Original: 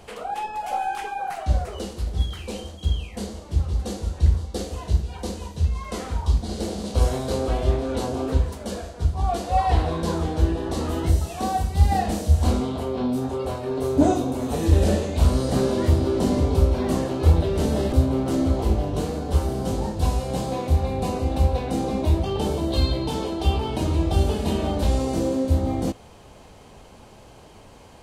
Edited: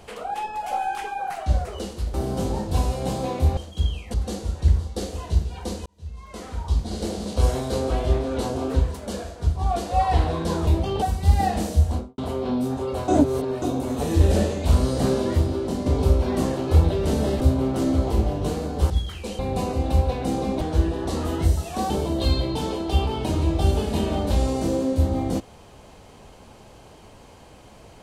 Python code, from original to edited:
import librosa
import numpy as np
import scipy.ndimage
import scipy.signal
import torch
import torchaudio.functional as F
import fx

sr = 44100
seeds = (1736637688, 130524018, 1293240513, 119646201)

y = fx.studio_fade_out(x, sr, start_s=12.26, length_s=0.44)
y = fx.edit(y, sr, fx.swap(start_s=2.14, length_s=0.49, other_s=19.42, other_length_s=1.43),
    fx.cut(start_s=3.2, length_s=0.52),
    fx.fade_in_span(start_s=5.44, length_s=1.1),
    fx.swap(start_s=10.25, length_s=1.29, other_s=22.07, other_length_s=0.35),
    fx.reverse_span(start_s=13.6, length_s=0.54),
    fx.fade_out_to(start_s=15.62, length_s=0.76, floor_db=-7.0), tone=tone)